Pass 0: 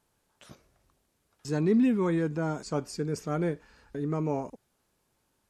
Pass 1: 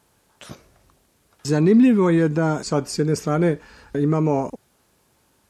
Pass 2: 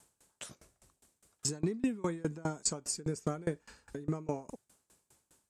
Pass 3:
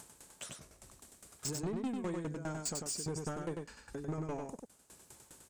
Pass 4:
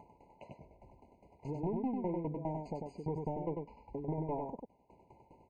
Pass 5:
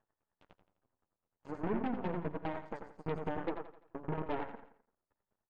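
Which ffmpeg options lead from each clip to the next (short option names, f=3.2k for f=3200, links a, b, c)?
-filter_complex "[0:a]highpass=40,asplit=2[a][b];[b]alimiter=limit=-23dB:level=0:latency=1:release=174,volume=2.5dB[c];[a][c]amix=inputs=2:normalize=0,volume=4.5dB"
-af "acompressor=threshold=-24dB:ratio=2.5,equalizer=f=8k:w=1.4:g=12.5,aeval=exprs='val(0)*pow(10,-26*if(lt(mod(4.9*n/s,1),2*abs(4.9)/1000),1-mod(4.9*n/s,1)/(2*abs(4.9)/1000),(mod(4.9*n/s,1)-2*abs(4.9)/1000)/(1-2*abs(4.9)/1000))/20)':c=same,volume=-3.5dB"
-af "acompressor=mode=upward:threshold=-47dB:ratio=2.5,asoftclip=type=tanh:threshold=-34dB,aecho=1:1:96:0.631,volume=1dB"
-af "lowpass=f=1.2k:t=q:w=2.9,afftfilt=real='re*eq(mod(floor(b*sr/1024/1000),2),0)':imag='im*eq(mod(floor(b*sr/1024/1000),2),0)':win_size=1024:overlap=0.75,volume=1dB"
-filter_complex "[0:a]flanger=delay=8.7:depth=2.5:regen=-3:speed=1.1:shape=triangular,aeval=exprs='0.0376*(cos(1*acos(clip(val(0)/0.0376,-1,1)))-cos(1*PI/2))+0.00133*(cos(3*acos(clip(val(0)/0.0376,-1,1)))-cos(3*PI/2))+0.00266*(cos(6*acos(clip(val(0)/0.0376,-1,1)))-cos(6*PI/2))+0.00473*(cos(7*acos(clip(val(0)/0.0376,-1,1)))-cos(7*PI/2))':c=same,asplit=2[a][b];[b]aecho=0:1:85|170|255|340:0.251|0.111|0.0486|0.0214[c];[a][c]amix=inputs=2:normalize=0,volume=4dB"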